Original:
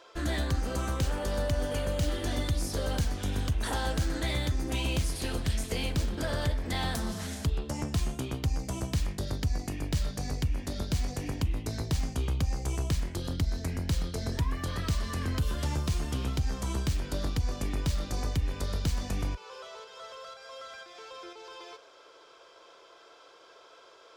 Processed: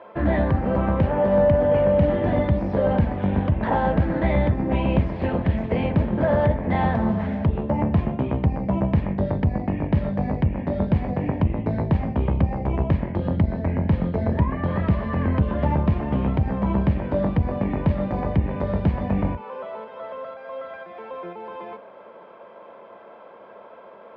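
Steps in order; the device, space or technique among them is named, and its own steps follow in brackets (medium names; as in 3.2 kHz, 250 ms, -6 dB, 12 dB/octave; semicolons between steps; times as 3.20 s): sub-octave bass pedal (octave divider, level -5 dB; cabinet simulation 64–2100 Hz, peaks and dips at 200 Hz +9 dB, 590 Hz +8 dB, 890 Hz +6 dB, 1.4 kHz -6 dB); trim +8.5 dB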